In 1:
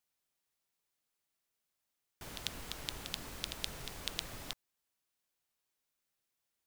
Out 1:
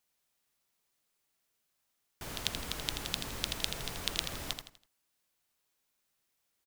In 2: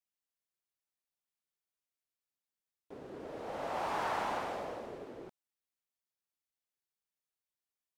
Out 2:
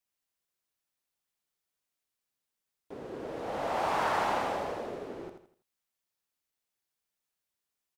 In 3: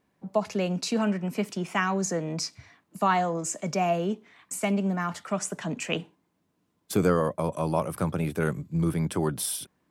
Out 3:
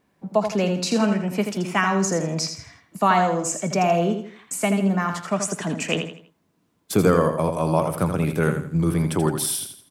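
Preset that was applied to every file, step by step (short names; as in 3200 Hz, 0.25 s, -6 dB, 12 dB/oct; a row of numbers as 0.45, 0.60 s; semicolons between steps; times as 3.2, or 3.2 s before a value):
feedback echo 82 ms, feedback 35%, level -7.5 dB; gain +5 dB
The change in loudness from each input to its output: +6.0, +6.0, +6.0 LU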